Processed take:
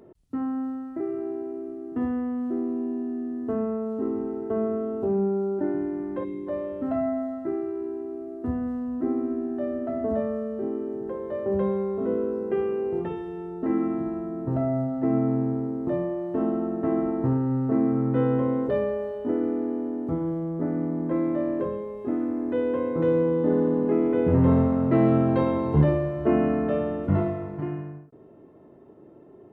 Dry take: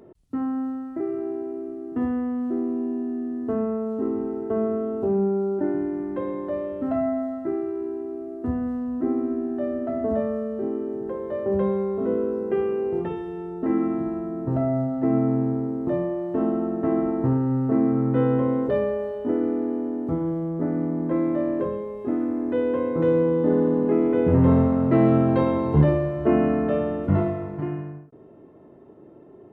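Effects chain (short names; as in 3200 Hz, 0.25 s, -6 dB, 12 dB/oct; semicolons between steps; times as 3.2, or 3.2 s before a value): spectral gain 6.24–6.47, 450–2000 Hz -15 dB; gain -2 dB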